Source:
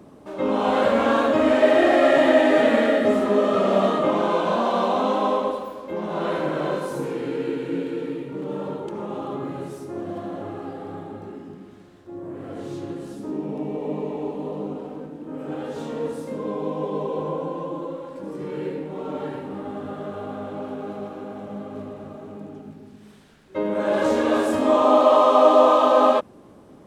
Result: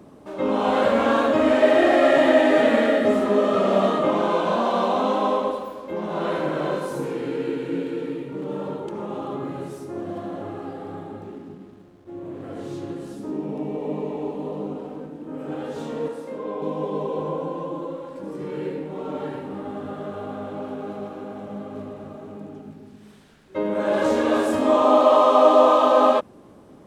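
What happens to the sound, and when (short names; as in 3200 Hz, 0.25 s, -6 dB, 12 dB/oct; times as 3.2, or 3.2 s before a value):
11.23–12.43 median filter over 25 samples
16.08–16.62 tone controls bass -11 dB, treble -7 dB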